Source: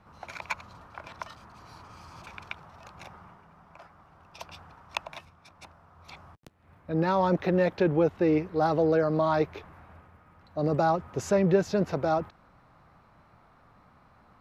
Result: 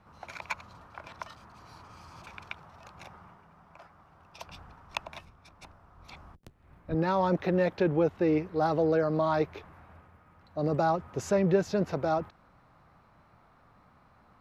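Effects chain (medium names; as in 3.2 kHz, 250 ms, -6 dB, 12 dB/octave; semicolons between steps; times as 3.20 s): 4.46–6.95 s: octave divider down 1 oct, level 0 dB; trim -2 dB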